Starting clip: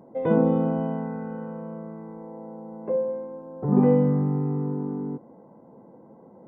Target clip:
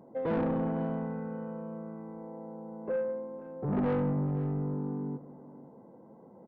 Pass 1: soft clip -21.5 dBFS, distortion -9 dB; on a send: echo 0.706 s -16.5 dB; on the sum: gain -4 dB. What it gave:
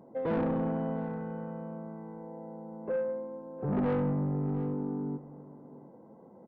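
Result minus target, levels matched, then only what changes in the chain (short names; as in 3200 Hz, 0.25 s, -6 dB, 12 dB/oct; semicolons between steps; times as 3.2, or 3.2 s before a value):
echo 0.196 s late
change: echo 0.51 s -16.5 dB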